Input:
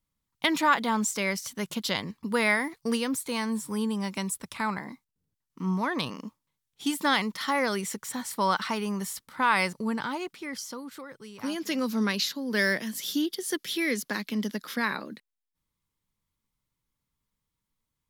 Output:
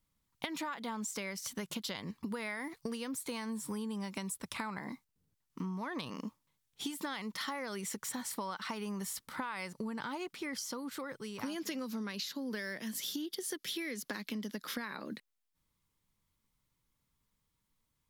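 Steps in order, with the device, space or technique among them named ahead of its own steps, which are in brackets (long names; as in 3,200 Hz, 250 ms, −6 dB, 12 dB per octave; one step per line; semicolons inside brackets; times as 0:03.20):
serial compression, leveller first (downward compressor 3 to 1, threshold −30 dBFS, peak gain reduction 10 dB; downward compressor 6 to 1, threshold −39 dBFS, peak gain reduction 12.5 dB)
level +2.5 dB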